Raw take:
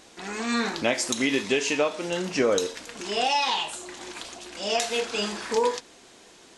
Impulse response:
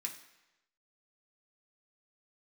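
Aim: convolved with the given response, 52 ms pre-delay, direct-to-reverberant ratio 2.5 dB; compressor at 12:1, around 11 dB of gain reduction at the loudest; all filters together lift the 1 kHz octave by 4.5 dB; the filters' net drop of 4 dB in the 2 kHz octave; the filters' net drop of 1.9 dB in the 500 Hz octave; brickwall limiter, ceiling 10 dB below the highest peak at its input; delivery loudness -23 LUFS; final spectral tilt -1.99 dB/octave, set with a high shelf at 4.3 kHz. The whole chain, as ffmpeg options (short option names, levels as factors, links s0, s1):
-filter_complex "[0:a]equalizer=f=500:t=o:g=-4,equalizer=f=1000:t=o:g=8.5,equalizer=f=2000:t=o:g=-9,highshelf=f=4300:g=5.5,acompressor=threshold=0.0398:ratio=12,alimiter=limit=0.0708:level=0:latency=1,asplit=2[s0][s1];[1:a]atrim=start_sample=2205,adelay=52[s2];[s1][s2]afir=irnorm=-1:irlink=0,volume=0.891[s3];[s0][s3]amix=inputs=2:normalize=0,volume=2.82"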